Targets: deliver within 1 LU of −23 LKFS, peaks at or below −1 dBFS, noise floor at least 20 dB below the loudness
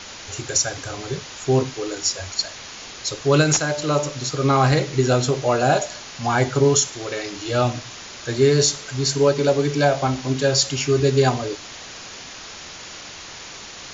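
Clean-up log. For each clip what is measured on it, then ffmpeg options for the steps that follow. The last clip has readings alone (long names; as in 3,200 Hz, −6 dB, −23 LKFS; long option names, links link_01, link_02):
background noise floor −38 dBFS; target noise floor −41 dBFS; integrated loudness −20.5 LKFS; sample peak −6.0 dBFS; target loudness −23.0 LKFS
→ -af "afftdn=noise_reduction=6:noise_floor=-38"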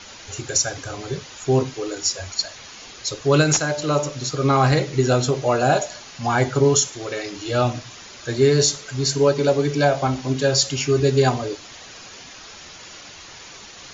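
background noise floor −41 dBFS; integrated loudness −20.5 LKFS; sample peak −6.5 dBFS; target loudness −23.0 LKFS
→ -af "volume=-2.5dB"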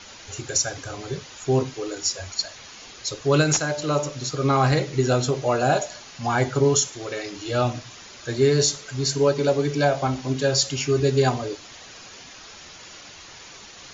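integrated loudness −23.0 LKFS; sample peak −9.0 dBFS; background noise floor −44 dBFS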